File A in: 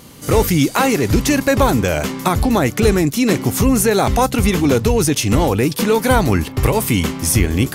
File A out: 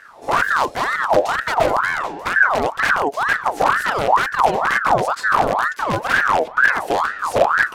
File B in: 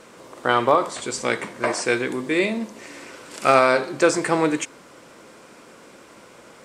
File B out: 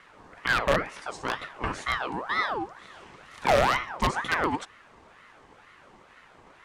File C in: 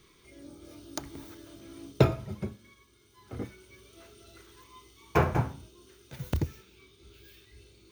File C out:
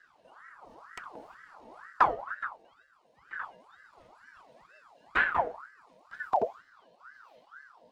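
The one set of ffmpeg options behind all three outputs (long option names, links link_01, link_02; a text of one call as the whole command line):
ffmpeg -i in.wav -af "aeval=exprs='(mod(2.24*val(0)+1,2)-1)/2.24':channel_layout=same,aemphasis=mode=reproduction:type=bsi,aeval=exprs='val(0)*sin(2*PI*1100*n/s+1100*0.5/2.1*sin(2*PI*2.1*n/s))':channel_layout=same,volume=-6dB" out.wav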